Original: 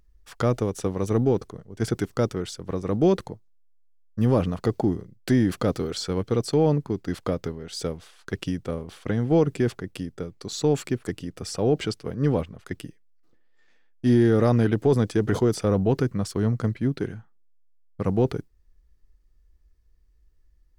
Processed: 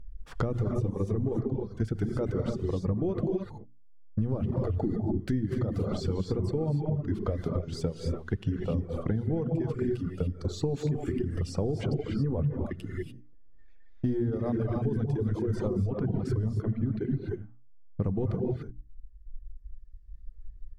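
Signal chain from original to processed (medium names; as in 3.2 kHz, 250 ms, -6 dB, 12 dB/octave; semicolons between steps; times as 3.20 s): gated-style reverb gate 320 ms rising, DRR 0.5 dB; peak limiter -14.5 dBFS, peak gain reduction 9 dB; tilt EQ -3.5 dB/octave; hum notches 60/120/180/240/300 Hz; reverb removal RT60 1.8 s; compression 6:1, threshold -26 dBFS, peak gain reduction 15 dB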